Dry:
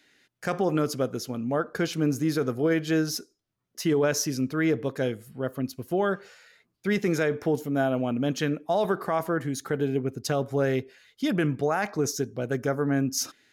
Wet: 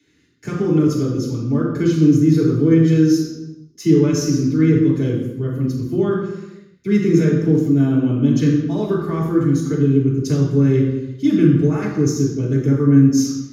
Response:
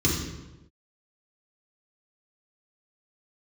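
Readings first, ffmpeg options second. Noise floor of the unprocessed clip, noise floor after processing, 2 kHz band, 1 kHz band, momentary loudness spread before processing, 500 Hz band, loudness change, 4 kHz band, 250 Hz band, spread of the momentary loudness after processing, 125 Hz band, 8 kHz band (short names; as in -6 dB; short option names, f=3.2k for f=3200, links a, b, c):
-76 dBFS, -47 dBFS, -2.0 dB, -3.0 dB, 6 LU, +5.5 dB, +10.5 dB, +1.0 dB, +13.0 dB, 9 LU, +15.0 dB, +2.5 dB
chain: -filter_complex "[1:a]atrim=start_sample=2205[a];[0:a][a]afir=irnorm=-1:irlink=0,volume=-12dB"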